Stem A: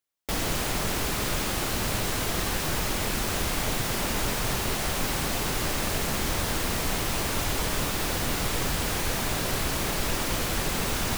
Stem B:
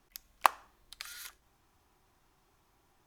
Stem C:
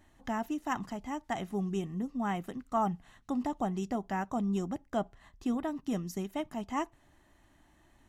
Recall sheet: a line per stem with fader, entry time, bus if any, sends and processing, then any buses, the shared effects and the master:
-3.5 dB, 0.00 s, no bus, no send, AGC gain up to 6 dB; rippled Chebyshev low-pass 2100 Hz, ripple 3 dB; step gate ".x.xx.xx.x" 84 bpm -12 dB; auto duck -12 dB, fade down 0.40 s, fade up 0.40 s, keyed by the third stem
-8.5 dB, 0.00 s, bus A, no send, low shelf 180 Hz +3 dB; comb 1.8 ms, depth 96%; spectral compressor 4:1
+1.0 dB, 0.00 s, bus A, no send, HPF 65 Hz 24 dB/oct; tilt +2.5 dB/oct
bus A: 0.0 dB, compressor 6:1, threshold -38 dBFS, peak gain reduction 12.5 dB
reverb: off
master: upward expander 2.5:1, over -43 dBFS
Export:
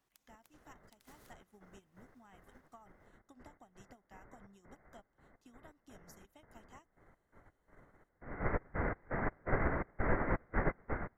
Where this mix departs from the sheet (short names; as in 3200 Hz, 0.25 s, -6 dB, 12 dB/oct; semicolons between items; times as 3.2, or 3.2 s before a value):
stem B: missing comb 1.8 ms, depth 96%; stem C: missing HPF 65 Hz 24 dB/oct